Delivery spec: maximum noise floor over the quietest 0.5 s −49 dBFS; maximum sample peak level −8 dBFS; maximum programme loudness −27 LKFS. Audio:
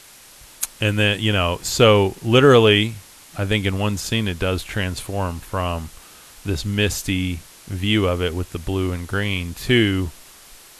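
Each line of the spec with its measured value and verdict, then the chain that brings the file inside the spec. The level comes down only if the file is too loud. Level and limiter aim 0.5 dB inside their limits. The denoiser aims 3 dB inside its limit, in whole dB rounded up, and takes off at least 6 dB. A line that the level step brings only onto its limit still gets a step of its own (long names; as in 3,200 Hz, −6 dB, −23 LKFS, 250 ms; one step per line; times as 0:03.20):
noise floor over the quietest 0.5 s −45 dBFS: out of spec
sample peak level −2.0 dBFS: out of spec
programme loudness −20.0 LKFS: out of spec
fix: level −7.5 dB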